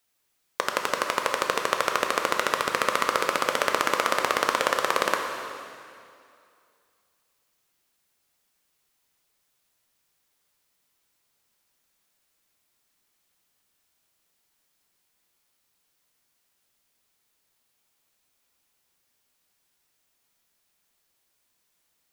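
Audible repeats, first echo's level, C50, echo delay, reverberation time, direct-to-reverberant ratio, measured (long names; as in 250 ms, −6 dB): no echo audible, no echo audible, 4.0 dB, no echo audible, 2.4 s, 2.5 dB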